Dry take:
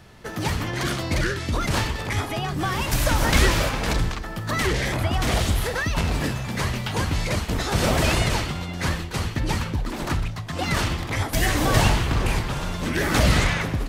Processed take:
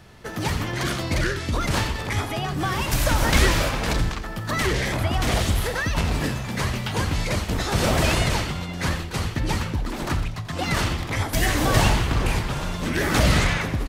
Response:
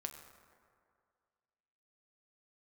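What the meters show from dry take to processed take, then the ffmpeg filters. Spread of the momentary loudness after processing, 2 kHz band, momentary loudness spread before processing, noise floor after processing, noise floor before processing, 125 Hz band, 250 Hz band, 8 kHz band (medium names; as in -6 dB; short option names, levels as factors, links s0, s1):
8 LU, 0.0 dB, 8 LU, -32 dBFS, -33 dBFS, 0.0 dB, 0.0 dB, 0.0 dB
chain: -af "aecho=1:1:87:0.2"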